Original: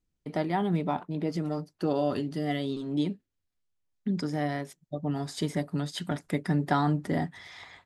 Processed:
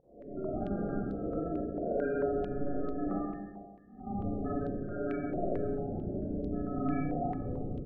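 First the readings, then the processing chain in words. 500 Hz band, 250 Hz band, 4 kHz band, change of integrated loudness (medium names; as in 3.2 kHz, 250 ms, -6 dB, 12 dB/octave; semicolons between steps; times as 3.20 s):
-1.0 dB, -4.0 dB, under -25 dB, -4.5 dB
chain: reverse spectral sustain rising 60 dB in 0.42 s; high-pass 150 Hz 12 dB/octave; tilt EQ +4 dB/octave; reverse; compression 10:1, threshold -38 dBFS, peak gain reduction 18 dB; reverse; sample-rate reducer 1 kHz, jitter 0%; loudest bins only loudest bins 16; on a send: feedback delay 135 ms, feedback 36%, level -9 dB; on the sum: Schroeder reverb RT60 1.4 s, combs from 30 ms, DRR -7.5 dB; step-sequenced low-pass 4.5 Hz 740–4000 Hz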